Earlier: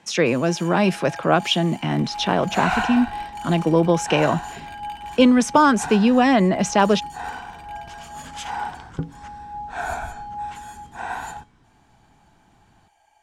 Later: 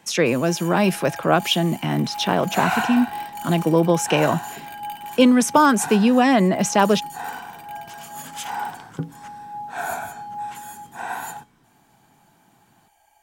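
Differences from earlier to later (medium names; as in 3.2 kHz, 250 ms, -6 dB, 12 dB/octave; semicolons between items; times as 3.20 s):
second sound: add high-pass 120 Hz 24 dB/octave; master: remove low-pass 6.7 kHz 12 dB/octave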